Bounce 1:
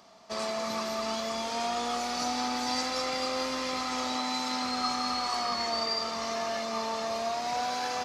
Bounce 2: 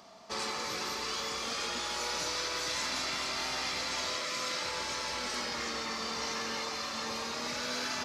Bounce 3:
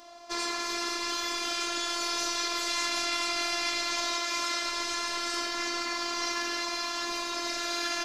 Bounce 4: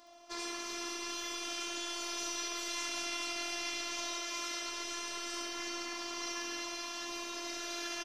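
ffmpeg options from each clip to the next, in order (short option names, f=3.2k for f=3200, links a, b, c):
-af "afftfilt=real='re*lt(hypot(re,im),0.0708)':imag='im*lt(hypot(re,im),0.0708)':win_size=1024:overlap=0.75,volume=1.5dB"
-af "afftfilt=real='hypot(re,im)*cos(PI*b)':imag='0':win_size=512:overlap=0.75,volume=7.5dB"
-af "aecho=1:1:70|140|210|280|350|420|490:0.501|0.266|0.141|0.0746|0.0395|0.021|0.0111,volume=-8.5dB"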